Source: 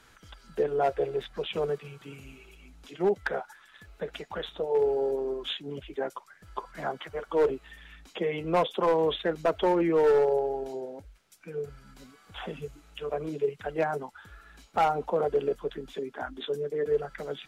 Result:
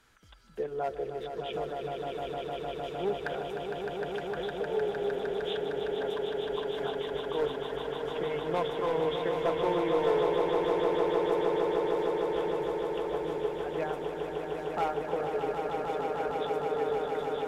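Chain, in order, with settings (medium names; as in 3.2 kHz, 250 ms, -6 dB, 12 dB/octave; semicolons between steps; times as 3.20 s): echo with a slow build-up 153 ms, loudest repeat 8, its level -6.5 dB; trim -7 dB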